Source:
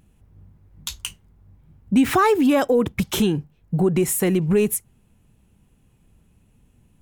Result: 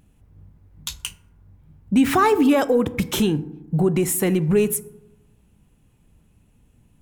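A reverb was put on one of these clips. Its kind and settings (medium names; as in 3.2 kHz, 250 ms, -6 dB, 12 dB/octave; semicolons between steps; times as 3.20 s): FDN reverb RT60 0.96 s, low-frequency decay 1.25×, high-frequency decay 0.4×, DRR 13.5 dB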